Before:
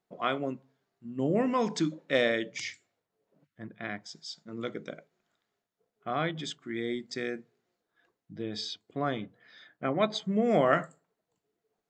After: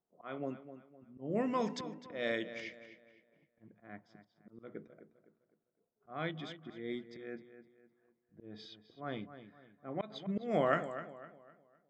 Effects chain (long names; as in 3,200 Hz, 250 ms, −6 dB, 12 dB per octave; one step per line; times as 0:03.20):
volume swells 200 ms
low-pass that shuts in the quiet parts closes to 1,000 Hz, open at −24 dBFS
feedback echo with a low-pass in the loop 255 ms, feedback 37%, low-pass 3,900 Hz, level −12 dB
level −6 dB